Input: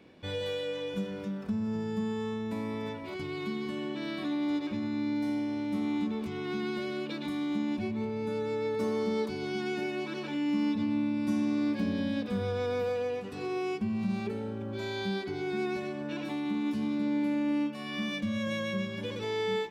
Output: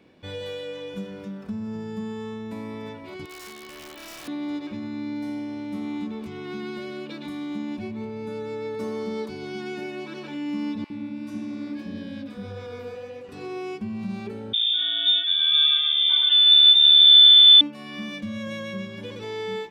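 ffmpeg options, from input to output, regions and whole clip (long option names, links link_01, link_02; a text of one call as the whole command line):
ffmpeg -i in.wav -filter_complex "[0:a]asettb=1/sr,asplit=3[link_01][link_02][link_03];[link_01]atrim=end=3.254[link_04];[link_02]atrim=start=3.25:end=4.28,asetpts=PTS-STARTPTS,afade=type=in:duration=0.004:curve=qsin,afade=type=out:start_time=1.026:duration=0.004:curve=qsin,highpass=520,aeval=exprs='(mod(53.1*val(0)+1,2)-1)/53.1':channel_layout=same[link_05];[link_03]atrim=start=4.276[link_06];[link_04][link_05]acrossfade=duration=0.004:curve1=hsin:curve2=qsin[link_07];[link_07][link_06]acrossfade=duration=0.004:curve1=qsin:curve2=hsin,asettb=1/sr,asplit=3[link_08][link_09][link_10];[link_08]atrim=end=10.844[link_11];[link_09]atrim=start=10.84:end=13.29,asetpts=PTS-STARTPTS,afade=type=in:duration=0.004:curve=qsin,afade=type=out:start_time=2.446:duration=0.004:curve=qsin,flanger=delay=5.5:depth=9.7:regen=-38:speed=1.7:shape=triangular,acrossover=split=740[link_12][link_13];[link_12]adelay=60[link_14];[link_14][link_13]amix=inputs=2:normalize=0,atrim=end_sample=108045[link_15];[link_10]atrim=start=13.286[link_16];[link_11][link_15]acrossfade=duration=0.004:curve1=hsin:curve2=qsin[link_17];[link_17][link_16]acrossfade=duration=0.004:curve1=qsin:curve2=hsin,asettb=1/sr,asplit=3[link_18][link_19][link_20];[link_18]atrim=end=14.534[link_21];[link_19]atrim=start=14.53:end=17.61,asetpts=PTS-STARTPTS,afade=type=in:duration=0.004:curve=qsin,afade=type=out:start_time=3.076:duration=0.004:curve=qsin,equalizer=frequency=230:width=0.37:gain=14,aecho=1:1:3.5:0.72,atrim=end_sample=135828,lowpass=frequency=3200:width_type=q:width=0.5098,lowpass=frequency=3200:width_type=q:width=0.6013,lowpass=frequency=3200:width_type=q:width=0.9,lowpass=frequency=3200:width_type=q:width=2.563,afreqshift=-3800[link_22];[link_20]atrim=start=17.606[link_23];[link_21][link_22]acrossfade=duration=0.004:curve1=hsin:curve2=qsin[link_24];[link_24][link_23]acrossfade=duration=0.004:curve1=qsin:curve2=hsin" out.wav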